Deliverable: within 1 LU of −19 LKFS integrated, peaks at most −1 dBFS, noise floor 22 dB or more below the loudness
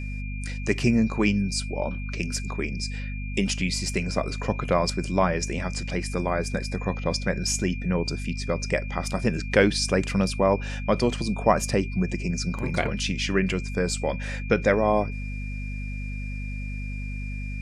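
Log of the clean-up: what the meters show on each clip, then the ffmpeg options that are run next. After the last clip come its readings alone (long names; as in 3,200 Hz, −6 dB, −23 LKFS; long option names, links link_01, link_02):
mains hum 50 Hz; hum harmonics up to 250 Hz; level of the hum −29 dBFS; interfering tone 2,400 Hz; level of the tone −40 dBFS; integrated loudness −26.5 LKFS; sample peak −5.0 dBFS; target loudness −19.0 LKFS
→ -af "bandreject=frequency=50:width_type=h:width=6,bandreject=frequency=100:width_type=h:width=6,bandreject=frequency=150:width_type=h:width=6,bandreject=frequency=200:width_type=h:width=6,bandreject=frequency=250:width_type=h:width=6"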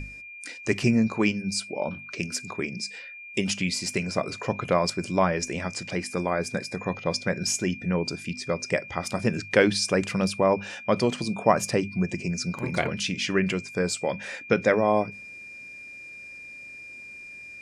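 mains hum none found; interfering tone 2,400 Hz; level of the tone −40 dBFS
→ -af "bandreject=frequency=2400:width=30"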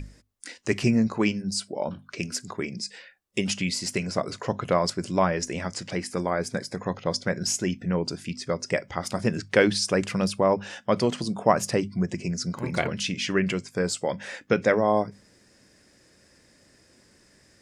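interfering tone none found; integrated loudness −27.0 LKFS; sample peak −5.0 dBFS; target loudness −19.0 LKFS
→ -af "volume=8dB,alimiter=limit=-1dB:level=0:latency=1"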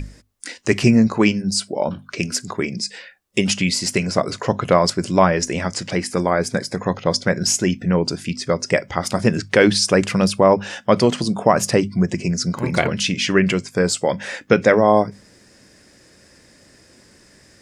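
integrated loudness −19.0 LKFS; sample peak −1.0 dBFS; background noise floor −52 dBFS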